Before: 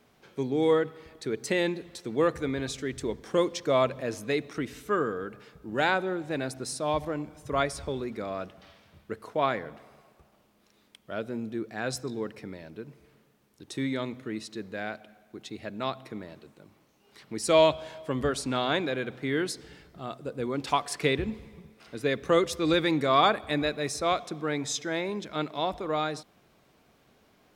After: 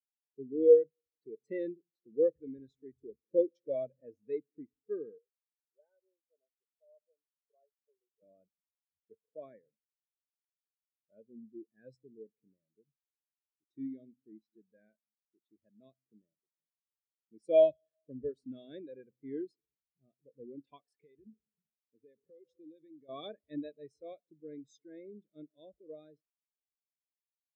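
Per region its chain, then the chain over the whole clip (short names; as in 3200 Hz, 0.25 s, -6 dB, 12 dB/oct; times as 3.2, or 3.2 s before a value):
5.18–8.22 ladder band-pass 700 Hz, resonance 30% + comb 4.6 ms, depth 32%
20.8–23.09 low shelf 73 Hz -10 dB + compressor 10:1, threshold -31 dBFS
whole clip: band shelf 990 Hz -10 dB 1.2 oct; spectral expander 2.5:1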